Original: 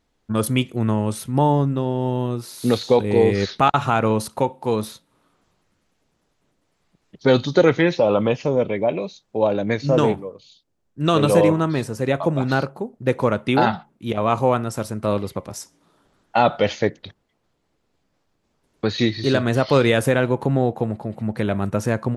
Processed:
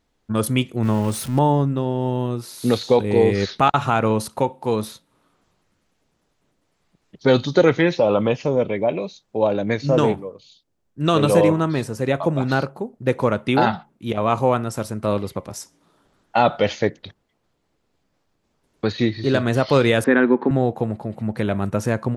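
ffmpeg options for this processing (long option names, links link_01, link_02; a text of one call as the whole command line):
ffmpeg -i in.wav -filter_complex "[0:a]asettb=1/sr,asplit=3[link_01][link_02][link_03];[link_01]atrim=end=0.834[link_04];[link_02]atrim=start=0.83:end=1.39,asetpts=PTS-STARTPTS,afade=type=in:duration=0.004:curve=qsin,afade=type=out:start_time=0.556:duration=0.004:curve=qsin,aeval=exprs='val(0)+0.5*0.0316*sgn(val(0))':channel_layout=same[link_05];[link_03]atrim=start=1.386[link_06];[link_04][link_05]acrossfade=duration=0.004:curve1=hsin:curve2=qsin[link_07];[link_07][link_06]acrossfade=duration=0.004:curve1=qsin:curve2=hsin,asettb=1/sr,asplit=3[link_08][link_09][link_10];[link_08]atrim=end=18.924[link_11];[link_09]atrim=start=18.92:end=19.34,asetpts=PTS-STARTPTS,afade=type=in:duration=0.004:curve=qsin,afade=type=out:start_time=0.416:duration=0.004:curve=qsin,highshelf=frequency=3900:gain=-11.5[link_12];[link_10]atrim=start=19.336[link_13];[link_11][link_12]acrossfade=duration=0.004:curve1=hsin:curve2=qsin[link_14];[link_14][link_13]acrossfade=duration=0.004:curve1=qsin:curve2=hsin,asettb=1/sr,asplit=3[link_15][link_16][link_17];[link_15]atrim=end=20.044[link_18];[link_16]atrim=start=20.04:end=20.51,asetpts=PTS-STARTPTS,afade=type=in:duration=0.004:curve=qsin,afade=type=out:start_time=0.466:duration=0.004:curve=qsin,highpass=frequency=210:width=0.5412,highpass=frequency=210:width=1.3066,equalizer=frequency=240:width_type=q:width=4:gain=10,equalizer=frequency=370:width_type=q:width=4:gain=6,equalizer=frequency=610:width_type=q:width=4:gain=-7,equalizer=frequency=1100:width_type=q:width=4:gain=3,equalizer=frequency=1700:width_type=q:width=4:gain=8,equalizer=frequency=2900:width_type=q:width=4:gain=-8,lowpass=frequency=3500:width=0.5412,lowpass=frequency=3500:width=1.3066[link_19];[link_17]atrim=start=20.506[link_20];[link_18][link_19]acrossfade=duration=0.004:curve1=hsin:curve2=qsin[link_21];[link_21][link_20]acrossfade=duration=0.004:curve1=qsin:curve2=hsin" out.wav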